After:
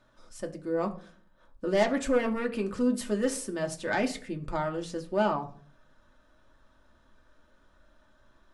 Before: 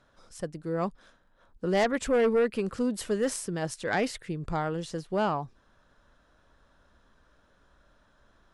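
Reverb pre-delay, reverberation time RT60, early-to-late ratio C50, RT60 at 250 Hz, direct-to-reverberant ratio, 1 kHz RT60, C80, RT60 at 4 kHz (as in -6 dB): 3 ms, 0.50 s, 15.5 dB, 0.70 s, 2.0 dB, 0.45 s, 19.0 dB, 0.30 s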